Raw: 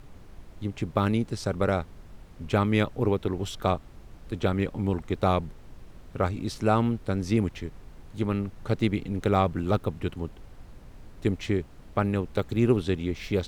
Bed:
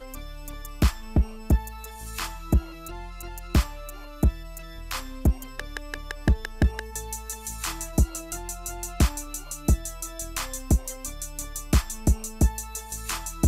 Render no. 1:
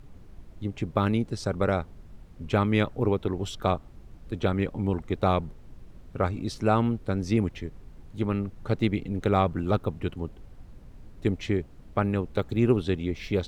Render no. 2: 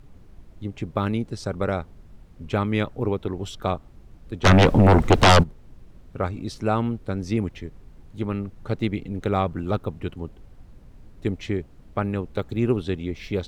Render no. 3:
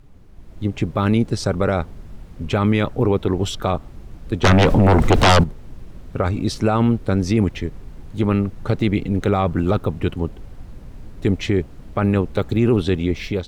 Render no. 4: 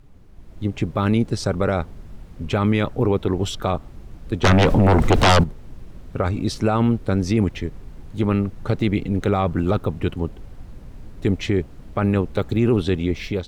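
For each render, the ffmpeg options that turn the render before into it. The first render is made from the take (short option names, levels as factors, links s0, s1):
-af "afftdn=nr=6:nf=-49"
-filter_complex "[0:a]asplit=3[s0][s1][s2];[s0]afade=t=out:st=4.44:d=0.02[s3];[s1]aeval=exprs='0.355*sin(PI/2*5.62*val(0)/0.355)':c=same,afade=t=in:st=4.44:d=0.02,afade=t=out:st=5.42:d=0.02[s4];[s2]afade=t=in:st=5.42:d=0.02[s5];[s3][s4][s5]amix=inputs=3:normalize=0"
-af "alimiter=limit=0.126:level=0:latency=1:release=14,dynaudnorm=f=330:g=3:m=3.16"
-af "volume=0.841"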